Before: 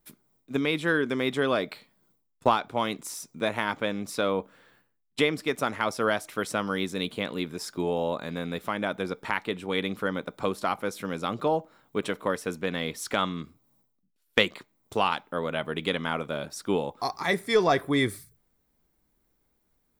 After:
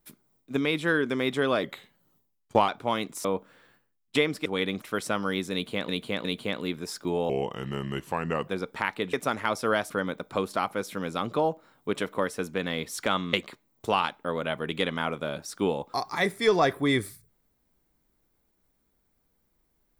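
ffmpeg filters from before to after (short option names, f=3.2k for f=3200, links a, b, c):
-filter_complex "[0:a]asplit=13[a][b][c][d][e][f][g][h][i][j][k][l][m];[a]atrim=end=1.634[n];[b]atrim=start=1.63:end=2.58,asetpts=PTS-STARTPTS,asetrate=39690,aresample=44100[o];[c]atrim=start=2.576:end=3.142[p];[d]atrim=start=4.278:end=5.492[q];[e]atrim=start=9.618:end=9.982[r];[f]atrim=start=6.258:end=7.332[s];[g]atrim=start=6.968:end=7.332[t];[h]atrim=start=6.968:end=8.024[u];[i]atrim=start=8.02:end=8.97,asetpts=PTS-STARTPTS,asetrate=35280,aresample=44100[v];[j]atrim=start=8.966:end=9.622[w];[k]atrim=start=5.488:end=6.262[x];[l]atrim=start=9.978:end=13.412[y];[m]atrim=start=14.408[z];[n][o]acrossfade=d=0.004:c1=hsin:c2=hsin[aa];[aa][p]acrossfade=d=0.004:c1=hsin:c2=hsin[ab];[ab][q]acrossfade=d=0.004:c1=hsin:c2=hsin[ac];[ac][r]acrossfade=d=0.004:c1=hsin:c2=hsin[ad];[ad][s]acrossfade=d=0.004:c1=hsin:c2=hsin[ae];[ae][t]acrossfade=d=0.004:c1=hsin:c2=hsin[af];[af][u]acrossfade=d=0.004:c1=hsin:c2=hsin[ag];[ag][v]acrossfade=d=0.004:c1=hsin:c2=hsin[ah];[ah][w]acrossfade=d=0.004:c1=hsin:c2=hsin[ai];[ai][x]acrossfade=d=0.004:c1=hsin:c2=hsin[aj];[aj][y]acrossfade=d=0.004:c1=hsin:c2=hsin[ak];[ak][z]acrossfade=d=0.004:c1=hsin:c2=hsin"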